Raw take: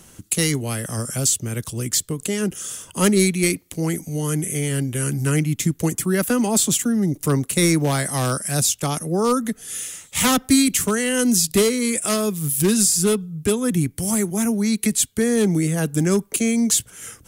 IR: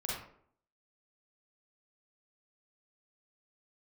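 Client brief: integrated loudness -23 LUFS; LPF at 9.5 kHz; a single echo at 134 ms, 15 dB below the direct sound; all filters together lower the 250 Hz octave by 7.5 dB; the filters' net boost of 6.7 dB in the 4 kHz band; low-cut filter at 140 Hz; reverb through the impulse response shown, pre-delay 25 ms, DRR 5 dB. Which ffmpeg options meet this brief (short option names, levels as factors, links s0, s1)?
-filter_complex "[0:a]highpass=140,lowpass=9500,equalizer=f=250:t=o:g=-9,equalizer=f=4000:t=o:g=8.5,aecho=1:1:134:0.178,asplit=2[s0][s1];[1:a]atrim=start_sample=2205,adelay=25[s2];[s1][s2]afir=irnorm=-1:irlink=0,volume=0.398[s3];[s0][s3]amix=inputs=2:normalize=0,volume=0.708"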